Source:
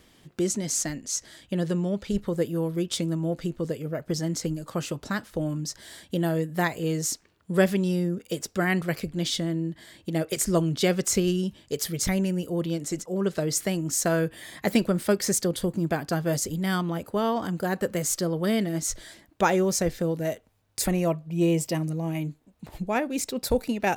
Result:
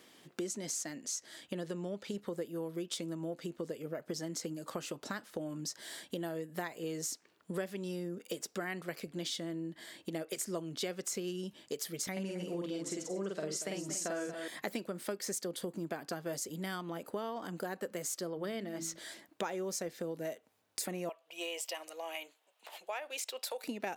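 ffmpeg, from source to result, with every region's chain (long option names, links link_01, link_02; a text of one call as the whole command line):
ffmpeg -i in.wav -filter_complex "[0:a]asettb=1/sr,asplit=3[link_01][link_02][link_03];[link_01]atrim=end=12.124[link_04];[link_02]atrim=start=12.12:end=14.48,asetpts=PTS-STARTPTS,afade=type=in:duration=0.004:curve=qsin,afade=type=out:start_time=2.356:duration=0.004:curve=qsin,lowpass=8800,asplit=2[link_05][link_06];[link_06]adelay=46,volume=-2dB[link_07];[link_05][link_07]amix=inputs=2:normalize=0,atrim=end_sample=104076,aecho=1:1:234:0.237,atrim=end_sample=104076[link_08];[link_03]atrim=start=14.476[link_09];[link_04][link_08]acrossfade=duration=0.004:curve1=hsin:curve2=qsin[link_10];[link_10][link_09]acrossfade=duration=0.004:curve1=qsin:curve2=hsin,asettb=1/sr,asplit=3[link_11][link_12][link_13];[link_11]atrim=end=18.304[link_14];[link_12]atrim=start=18.3:end=18.98,asetpts=PTS-STARTPTS,afade=type=in:duration=0.004:curve=qsin,afade=type=out:start_time=0.676:duration=0.004:curve=qsin,equalizer=frequency=9900:width_type=o:width=1.3:gain=-7.5,bandreject=frequency=54.65:width_type=h:width=4,bandreject=frequency=109.3:width_type=h:width=4,bandreject=frequency=163.95:width_type=h:width=4,bandreject=frequency=218.6:width_type=h:width=4,bandreject=frequency=273.25:width_type=h:width=4,bandreject=frequency=327.9:width_type=h:width=4[link_15];[link_13]atrim=start=18.976[link_16];[link_14][link_15]acrossfade=duration=0.004:curve1=hsin:curve2=qsin[link_17];[link_17][link_16]acrossfade=duration=0.004:curve1=qsin:curve2=hsin,asettb=1/sr,asplit=3[link_18][link_19][link_20];[link_18]atrim=end=21.094[link_21];[link_19]atrim=start=21.09:end=23.64,asetpts=PTS-STARTPTS,afade=type=in:duration=0.004:curve=qsin,afade=type=out:start_time=2.546:duration=0.004:curve=qsin,highpass=frequency=570:width=0.5412,highpass=frequency=570:width=1.3066,equalizer=frequency=3000:width_type=o:width=0.57:gain=8,acompressor=threshold=-33dB:ratio=1.5:attack=3.2:release=140:knee=1:detection=peak[link_22];[link_20]atrim=start=23.636[link_23];[link_21][link_22]acrossfade=duration=0.004:curve1=hsin:curve2=qsin[link_24];[link_24][link_23]acrossfade=duration=0.004:curve1=qsin:curve2=hsin,highpass=260,acompressor=threshold=-36dB:ratio=4,volume=-1dB" out.wav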